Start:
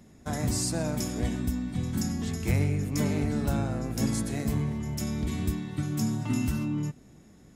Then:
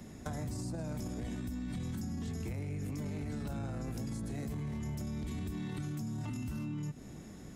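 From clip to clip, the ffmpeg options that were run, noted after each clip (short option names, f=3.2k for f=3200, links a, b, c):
-filter_complex "[0:a]acrossover=split=180|1200[a][b][c];[a]acompressor=threshold=-32dB:ratio=4[d];[b]acompressor=threshold=-38dB:ratio=4[e];[c]acompressor=threshold=-49dB:ratio=4[f];[d][e][f]amix=inputs=3:normalize=0,alimiter=level_in=8dB:limit=-24dB:level=0:latency=1:release=17,volume=-8dB,acompressor=threshold=-41dB:ratio=6,volume=5.5dB"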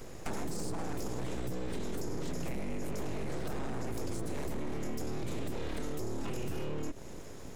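-af "aeval=exprs='abs(val(0))':c=same,volume=5dB"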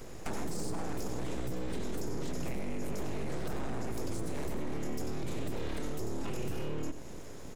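-af "aecho=1:1:93:0.266"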